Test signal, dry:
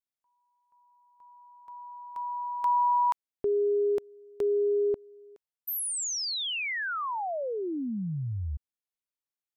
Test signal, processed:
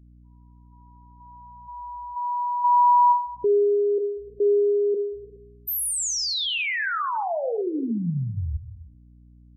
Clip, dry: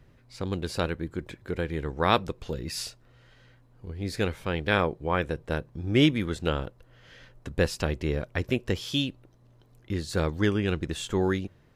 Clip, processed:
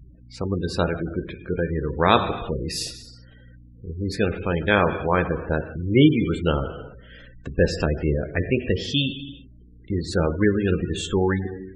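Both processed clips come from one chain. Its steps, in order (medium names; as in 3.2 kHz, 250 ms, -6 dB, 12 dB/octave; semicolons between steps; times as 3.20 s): gated-style reverb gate 420 ms falling, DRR 6 dB; hum 60 Hz, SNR 26 dB; spectral gate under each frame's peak -20 dB strong; trim +5 dB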